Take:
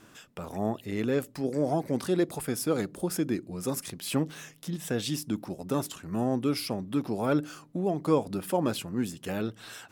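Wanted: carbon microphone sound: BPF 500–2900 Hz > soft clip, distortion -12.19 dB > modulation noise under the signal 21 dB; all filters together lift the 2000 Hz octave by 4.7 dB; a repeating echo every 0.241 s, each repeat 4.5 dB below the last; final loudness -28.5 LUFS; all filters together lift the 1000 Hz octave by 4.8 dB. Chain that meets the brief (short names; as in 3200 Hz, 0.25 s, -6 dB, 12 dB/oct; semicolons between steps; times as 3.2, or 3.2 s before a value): BPF 500–2900 Hz; bell 1000 Hz +6 dB; bell 2000 Hz +5 dB; feedback echo 0.241 s, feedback 60%, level -4.5 dB; soft clip -24.5 dBFS; modulation noise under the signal 21 dB; gain +6 dB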